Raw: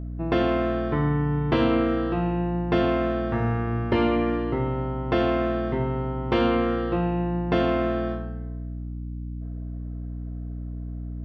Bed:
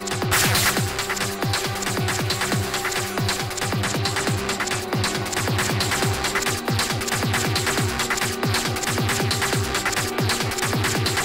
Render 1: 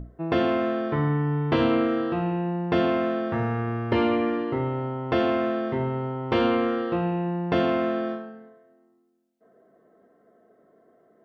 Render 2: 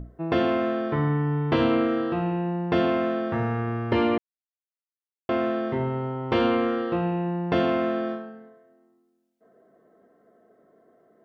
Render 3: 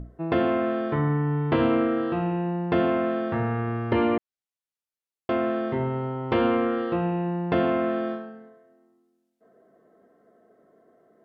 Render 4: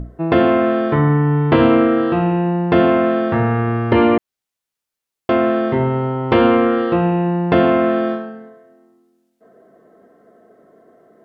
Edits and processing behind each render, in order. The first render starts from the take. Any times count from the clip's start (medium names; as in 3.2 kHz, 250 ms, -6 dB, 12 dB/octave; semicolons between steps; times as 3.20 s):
hum notches 60/120/180/240/300/360 Hz
4.18–5.29 s: mute
low-pass that closes with the level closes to 2.6 kHz, closed at -20 dBFS
trim +9.5 dB; peak limiter -1 dBFS, peak gain reduction 1 dB